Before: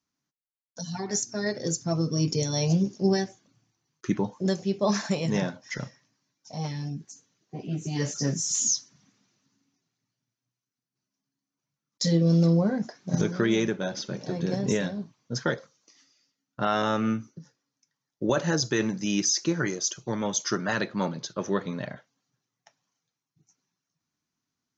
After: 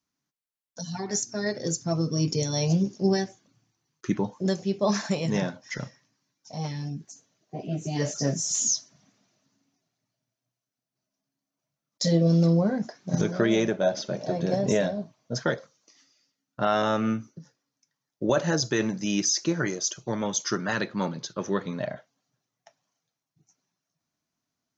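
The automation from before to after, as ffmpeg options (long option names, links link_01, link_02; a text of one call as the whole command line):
ffmpeg -i in.wav -af "asetnsamples=nb_out_samples=441:pad=0,asendcmd='7.08 equalizer g 12.5;12.27 equalizer g 3;13.29 equalizer g 14.5;15.42 equalizer g 4.5;20.24 equalizer g -2;21.79 equalizer g 9',equalizer=frequency=640:width_type=o:width=0.41:gain=1" out.wav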